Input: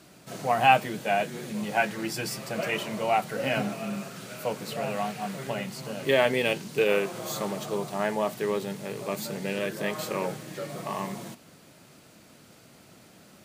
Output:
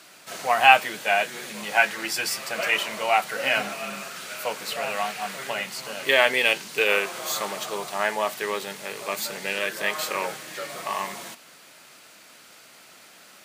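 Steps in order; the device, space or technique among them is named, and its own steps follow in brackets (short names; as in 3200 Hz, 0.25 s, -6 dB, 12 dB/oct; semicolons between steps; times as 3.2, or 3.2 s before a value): filter by subtraction (in parallel: LPF 1700 Hz 12 dB/oct + phase invert); on the sum: gain +6.5 dB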